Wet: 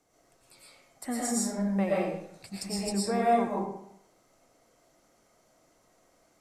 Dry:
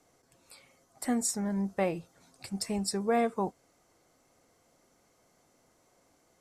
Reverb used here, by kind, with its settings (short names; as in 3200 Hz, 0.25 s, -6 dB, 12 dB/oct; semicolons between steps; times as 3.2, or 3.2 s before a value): digital reverb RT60 0.73 s, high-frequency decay 0.75×, pre-delay 75 ms, DRR -6 dB; gain -4.5 dB